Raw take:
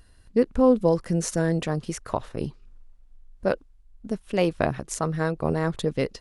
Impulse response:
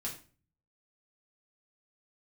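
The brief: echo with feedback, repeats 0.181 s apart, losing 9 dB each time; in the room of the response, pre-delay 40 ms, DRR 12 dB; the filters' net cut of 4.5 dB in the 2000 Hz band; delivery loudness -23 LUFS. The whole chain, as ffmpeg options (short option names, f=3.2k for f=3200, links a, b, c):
-filter_complex "[0:a]equalizer=f=2k:t=o:g=-6,aecho=1:1:181|362|543|724:0.355|0.124|0.0435|0.0152,asplit=2[a][b];[1:a]atrim=start_sample=2205,adelay=40[c];[b][c]afir=irnorm=-1:irlink=0,volume=-12dB[d];[a][d]amix=inputs=2:normalize=0,volume=2.5dB"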